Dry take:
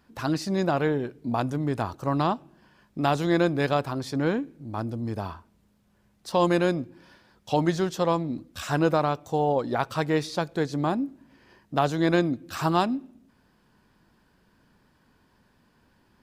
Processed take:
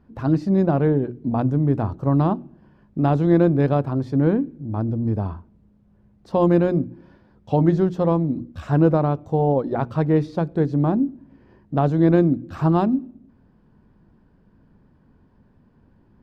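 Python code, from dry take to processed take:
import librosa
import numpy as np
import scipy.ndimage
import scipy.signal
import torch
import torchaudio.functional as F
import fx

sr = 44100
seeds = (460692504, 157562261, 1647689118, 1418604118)

y = fx.lowpass(x, sr, hz=1000.0, slope=6)
y = fx.low_shelf(y, sr, hz=440.0, db=11.5)
y = fx.hum_notches(y, sr, base_hz=60, count=6)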